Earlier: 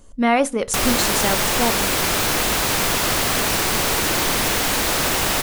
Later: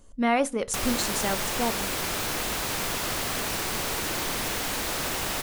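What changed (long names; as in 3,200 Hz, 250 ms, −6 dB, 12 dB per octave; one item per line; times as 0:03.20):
speech −6.0 dB
background −9.5 dB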